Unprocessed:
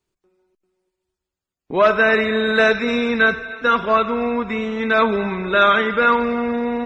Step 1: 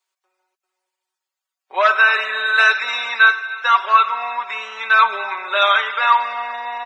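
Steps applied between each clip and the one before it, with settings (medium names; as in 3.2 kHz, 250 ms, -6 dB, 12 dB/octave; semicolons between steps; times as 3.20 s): high-pass 740 Hz 24 dB/octave; comb 5.3 ms, depth 72%; trim +2 dB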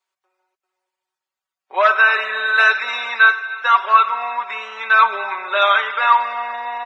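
treble shelf 3.6 kHz -8.5 dB; trim +1.5 dB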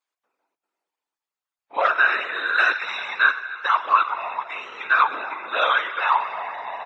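whisper effect; on a send at -21.5 dB: reverberation RT60 1.6 s, pre-delay 67 ms; on the sum: trim -5.5 dB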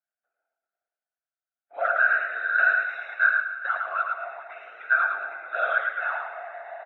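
two resonant band-passes 1 kHz, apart 1.1 oct; feedback delay 109 ms, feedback 26%, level -4 dB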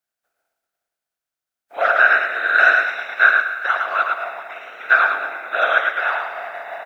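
spectral contrast reduction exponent 0.69; trim +7.5 dB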